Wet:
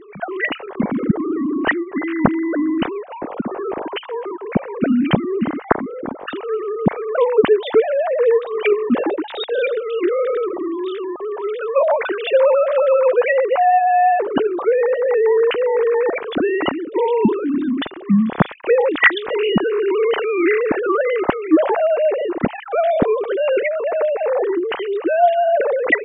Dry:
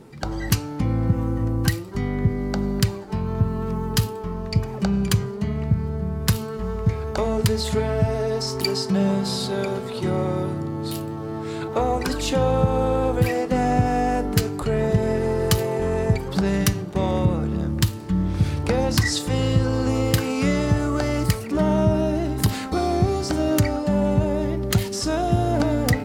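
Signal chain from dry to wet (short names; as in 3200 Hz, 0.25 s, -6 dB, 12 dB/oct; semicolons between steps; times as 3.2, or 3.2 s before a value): sine-wave speech; gain +4 dB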